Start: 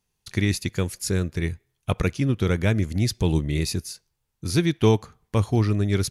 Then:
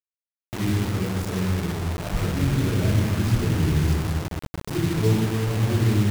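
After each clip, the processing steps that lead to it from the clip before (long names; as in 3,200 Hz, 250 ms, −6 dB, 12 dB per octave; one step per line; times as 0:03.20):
spectral tilt −3.5 dB per octave
convolution reverb RT60 2.2 s, pre-delay 115 ms
bit reduction 6 bits
level +5.5 dB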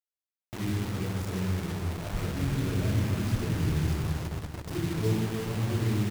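repeating echo 337 ms, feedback 36%, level −8.5 dB
level −7 dB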